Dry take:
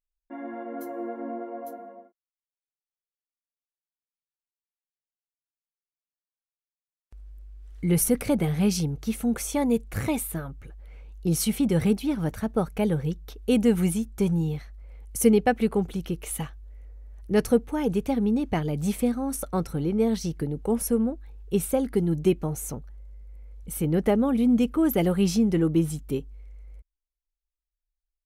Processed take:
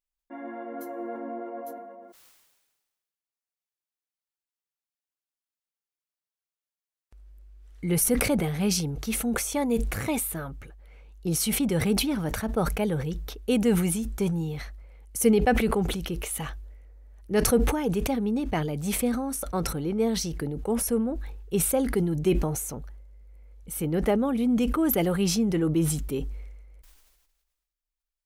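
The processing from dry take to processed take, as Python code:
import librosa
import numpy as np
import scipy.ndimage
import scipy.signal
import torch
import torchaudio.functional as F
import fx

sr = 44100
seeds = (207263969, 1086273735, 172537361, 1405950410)

y = fx.low_shelf(x, sr, hz=270.0, db=-6.0)
y = fx.sustainer(y, sr, db_per_s=43.0)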